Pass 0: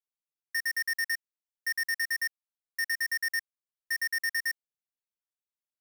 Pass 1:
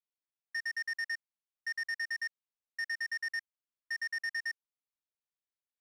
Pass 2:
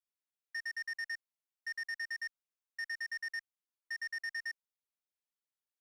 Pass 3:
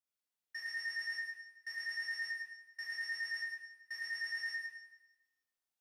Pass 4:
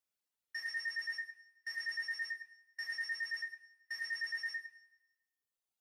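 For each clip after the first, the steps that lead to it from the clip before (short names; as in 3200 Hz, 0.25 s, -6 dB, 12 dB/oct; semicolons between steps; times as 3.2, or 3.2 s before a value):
LPF 5400 Hz 12 dB/oct; gain -5 dB
bell 60 Hz -13 dB 2 oct; gain -3.5 dB
Schroeder reverb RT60 1 s, combs from 25 ms, DRR -3 dB; gain -3.5 dB
reverb removal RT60 1.6 s; gain +2.5 dB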